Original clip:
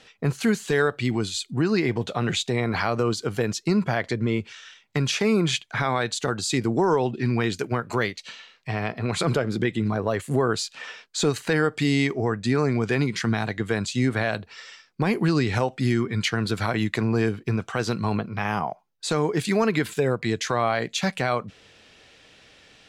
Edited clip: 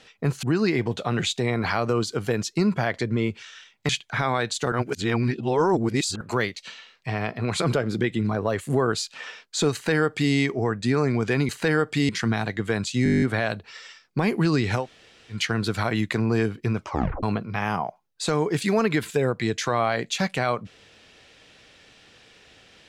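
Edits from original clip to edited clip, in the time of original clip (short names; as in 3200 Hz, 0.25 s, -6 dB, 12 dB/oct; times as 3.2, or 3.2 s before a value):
0.43–1.53 cut
4.99–5.5 cut
6.33–7.82 reverse
11.34–11.94 copy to 13.1
14.05 stutter 0.02 s, 10 plays
15.65–16.19 room tone, crossfade 0.16 s
17.63 tape stop 0.43 s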